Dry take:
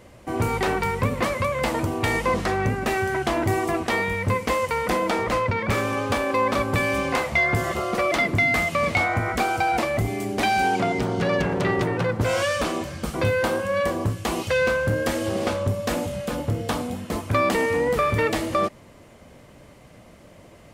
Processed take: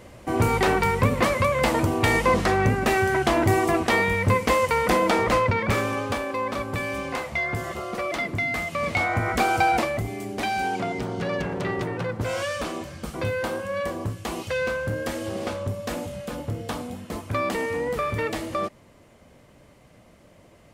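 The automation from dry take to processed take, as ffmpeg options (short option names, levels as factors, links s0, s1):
-af "volume=3.55,afade=t=out:st=5.34:d=0.99:silence=0.375837,afade=t=in:st=8.68:d=0.96:silence=0.375837,afade=t=out:st=9.64:d=0.38:silence=0.421697"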